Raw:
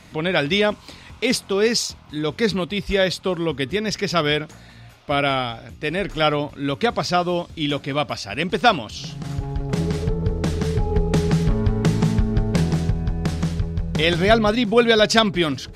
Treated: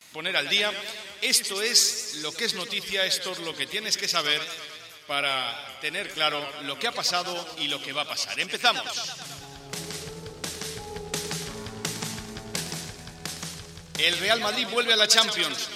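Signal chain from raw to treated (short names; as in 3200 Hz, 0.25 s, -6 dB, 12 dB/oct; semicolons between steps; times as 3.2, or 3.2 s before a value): gate with hold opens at -37 dBFS; tilt +4.5 dB/oct; warbling echo 0.109 s, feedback 71%, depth 138 cents, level -12 dB; gain -7.5 dB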